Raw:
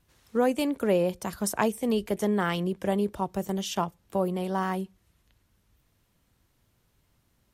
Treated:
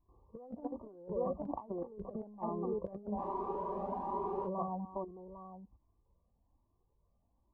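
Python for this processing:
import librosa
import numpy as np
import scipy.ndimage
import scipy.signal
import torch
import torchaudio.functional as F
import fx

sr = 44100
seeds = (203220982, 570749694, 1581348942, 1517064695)

p1 = fx.level_steps(x, sr, step_db=13)
p2 = fx.brickwall_lowpass(p1, sr, high_hz=1200.0)
p3 = fx.peak_eq(p2, sr, hz=130.0, db=-7.5, octaves=0.74)
p4 = p3 + fx.echo_multitap(p3, sr, ms=(246, 802), db=(-15.0, -12.0), dry=0)
p5 = fx.over_compress(p4, sr, threshold_db=-36.0, ratio=-0.5)
p6 = fx.spec_freeze(p5, sr, seeds[0], at_s=3.2, hold_s=1.28)
p7 = fx.comb_cascade(p6, sr, direction='rising', hz=1.2)
y = p7 * librosa.db_to_amplitude(2.5)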